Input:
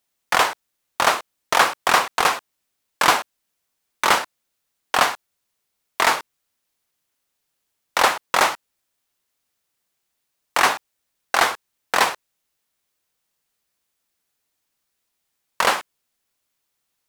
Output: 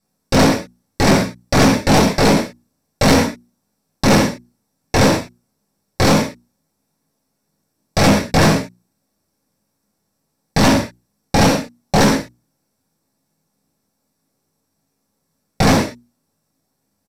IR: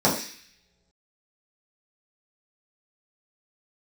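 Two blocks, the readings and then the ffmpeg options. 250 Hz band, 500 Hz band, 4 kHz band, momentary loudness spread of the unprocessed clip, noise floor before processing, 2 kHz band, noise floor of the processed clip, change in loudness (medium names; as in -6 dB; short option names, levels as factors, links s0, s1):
+23.5 dB, +10.0 dB, +3.0 dB, 13 LU, -77 dBFS, -0.5 dB, -72 dBFS, +4.5 dB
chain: -filter_complex "[0:a]acrossover=split=430|6400[s0][s1][s2];[s1]aeval=exprs='abs(val(0))':c=same[s3];[s0][s3][s2]amix=inputs=3:normalize=0,lowshelf=f=89:g=10.5,bandreject=f=60:t=h:w=6,bandreject=f=120:t=h:w=6,bandreject=f=180:t=h:w=6,bandreject=f=240:t=h:w=6,bandreject=f=300:t=h:w=6,bandreject=f=360:t=h:w=6[s4];[1:a]atrim=start_sample=2205,atrim=end_sample=6174[s5];[s4][s5]afir=irnorm=-1:irlink=0,aresample=32000,aresample=44100,asoftclip=type=tanh:threshold=0.794,volume=0.562"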